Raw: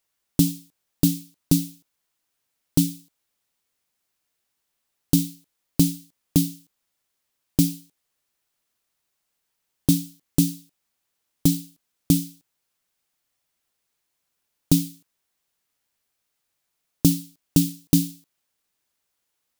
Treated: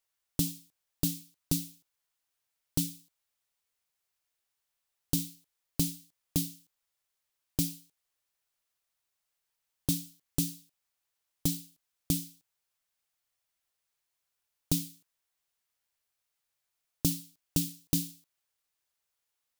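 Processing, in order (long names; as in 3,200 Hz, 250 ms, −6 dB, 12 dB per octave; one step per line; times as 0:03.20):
parametric band 240 Hz −9 dB 1.4 octaves
level −6 dB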